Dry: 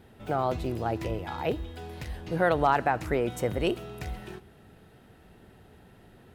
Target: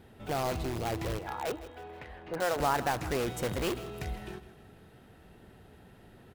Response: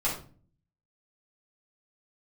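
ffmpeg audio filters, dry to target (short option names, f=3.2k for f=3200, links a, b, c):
-filter_complex "[0:a]asettb=1/sr,asplit=3[a][b][c];[a]atrim=end=1.194[d];[b]atrim=start=1.19:end=2.6,asetpts=PTS-STARTPTS,afade=t=in:d=0.004:c=qsin,afade=t=out:st=1.406:d=0.004:c=qsin,acrossover=split=340 2800:gain=0.224 1 0.112[e][f][g];[e][f][g]amix=inputs=3:normalize=0[h];[c]atrim=start=2.596[i];[d][h]acrossfade=d=0.004:c1=hsin:c2=qsin[j];[j][i]acrossfade=d=0.004:c1=qsin:c2=hsin,asplit=2[k][l];[l]aeval=exprs='(mod(18.8*val(0)+1,2)-1)/18.8':c=same,volume=-3dB[m];[k][m]amix=inputs=2:normalize=0,aecho=1:1:159|318|477|636:0.168|0.0722|0.031|0.0133,volume=-5.5dB"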